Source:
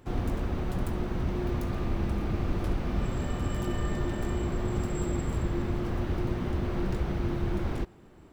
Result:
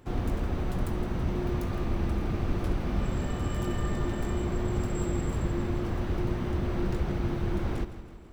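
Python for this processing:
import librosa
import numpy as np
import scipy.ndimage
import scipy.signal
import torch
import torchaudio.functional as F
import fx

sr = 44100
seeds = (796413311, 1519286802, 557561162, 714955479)

y = fx.echo_feedback(x, sr, ms=163, feedback_pct=56, wet_db=-13.0)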